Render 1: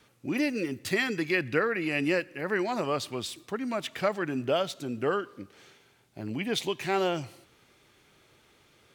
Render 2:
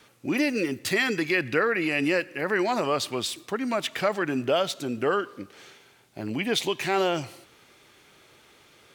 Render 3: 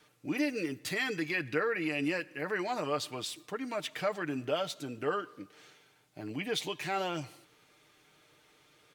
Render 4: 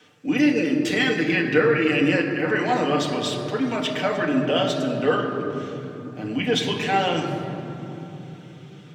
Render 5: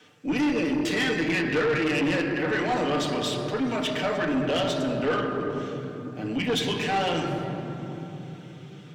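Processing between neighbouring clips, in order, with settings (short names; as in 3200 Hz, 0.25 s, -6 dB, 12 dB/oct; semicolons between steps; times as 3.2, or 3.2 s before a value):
low shelf 210 Hz -7 dB; in parallel at +1 dB: limiter -23.5 dBFS, peak gain reduction 12 dB
comb 6.6 ms, depth 50%; gain -9 dB
reverb RT60 3.5 s, pre-delay 3 ms, DRR 1 dB; gain +2.5 dB
tube stage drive 20 dB, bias 0.25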